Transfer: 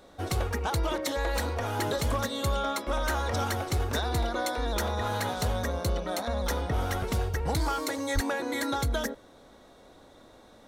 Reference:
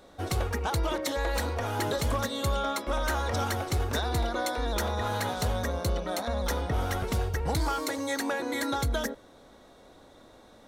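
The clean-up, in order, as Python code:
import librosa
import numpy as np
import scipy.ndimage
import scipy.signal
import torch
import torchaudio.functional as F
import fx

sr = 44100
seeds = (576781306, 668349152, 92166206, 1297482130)

y = fx.highpass(x, sr, hz=140.0, slope=24, at=(8.14, 8.26), fade=0.02)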